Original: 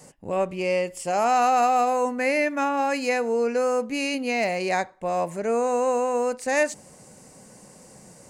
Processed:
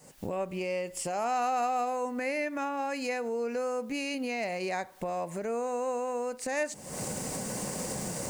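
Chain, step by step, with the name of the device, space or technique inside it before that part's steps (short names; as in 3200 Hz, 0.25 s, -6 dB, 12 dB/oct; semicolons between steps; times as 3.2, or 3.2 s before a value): cheap recorder with automatic gain (white noise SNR 38 dB; recorder AGC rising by 68 dB/s); gain -9 dB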